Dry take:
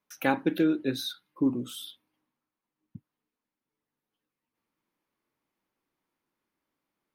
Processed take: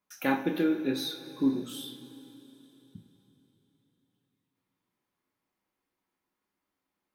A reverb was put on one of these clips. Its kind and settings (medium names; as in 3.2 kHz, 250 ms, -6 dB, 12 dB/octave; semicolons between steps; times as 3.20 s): two-slope reverb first 0.35 s, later 3.8 s, from -18 dB, DRR 1.5 dB; trim -3 dB